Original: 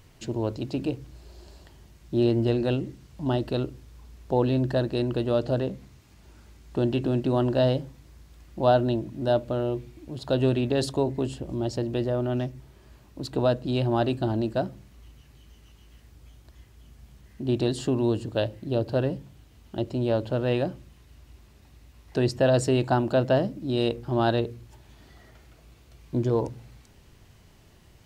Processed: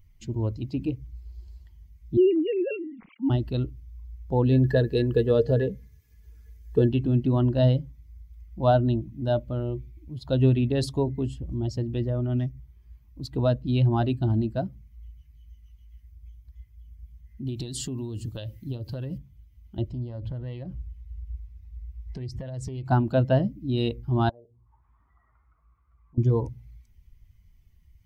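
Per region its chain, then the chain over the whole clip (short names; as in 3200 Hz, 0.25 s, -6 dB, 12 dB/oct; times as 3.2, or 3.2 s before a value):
2.17–3.3 sine-wave speech + sustainer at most 66 dB/s
4.49–6.89 high shelf 4600 Hz +6 dB + small resonant body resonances 450/1700 Hz, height 17 dB, ringing for 85 ms
17.47–19.18 high shelf 3500 Hz +10 dB + compressor 12:1, threshold -26 dBFS
19.88–22.86 low shelf 79 Hz +10 dB + compressor 8:1, threshold -29 dBFS + Doppler distortion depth 0.18 ms
24.29–26.18 tilt +2 dB/oct + compressor 2.5:1, threshold -50 dBFS + envelope low-pass 600–1500 Hz down, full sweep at -41 dBFS
whole clip: per-bin expansion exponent 1.5; low shelf 180 Hz +11.5 dB; notch 580 Hz, Q 18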